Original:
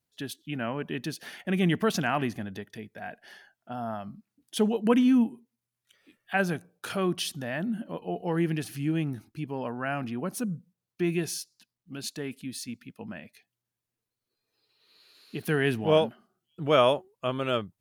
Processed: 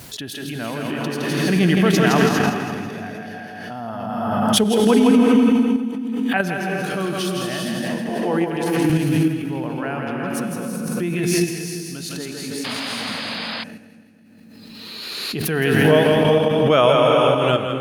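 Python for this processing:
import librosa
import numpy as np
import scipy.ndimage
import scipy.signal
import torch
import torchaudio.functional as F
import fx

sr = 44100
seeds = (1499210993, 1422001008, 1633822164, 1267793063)

p1 = fx.vibrato(x, sr, rate_hz=4.0, depth_cents=13.0)
p2 = p1 + fx.echo_split(p1, sr, split_hz=330.0, low_ms=244, high_ms=164, feedback_pct=52, wet_db=-4.0, dry=0)
p3 = fx.rev_gated(p2, sr, seeds[0], gate_ms=430, shape='rising', drr_db=1.5)
p4 = fx.level_steps(p3, sr, step_db=23)
p5 = p3 + F.gain(torch.from_numpy(p4), -0.5).numpy()
p6 = fx.highpass(p5, sr, hz=230.0, slope=12, at=(8.09, 8.9))
p7 = fx.spec_paint(p6, sr, seeds[1], shape='noise', start_s=12.64, length_s=1.0, low_hz=490.0, high_hz=5100.0, level_db=-30.0)
p8 = fx.pre_swell(p7, sr, db_per_s=23.0)
y = F.gain(torch.from_numpy(p8), 1.0).numpy()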